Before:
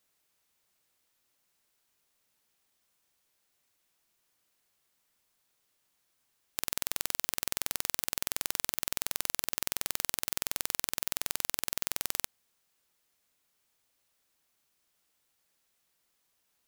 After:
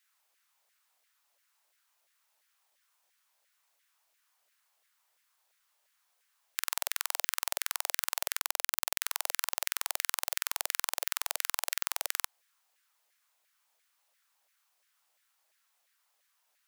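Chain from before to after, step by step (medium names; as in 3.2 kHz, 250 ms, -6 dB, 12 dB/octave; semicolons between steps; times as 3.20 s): LFO high-pass saw down 2.9 Hz 570–1900 Hz; 8.39–9.03 s: word length cut 8-bit, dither none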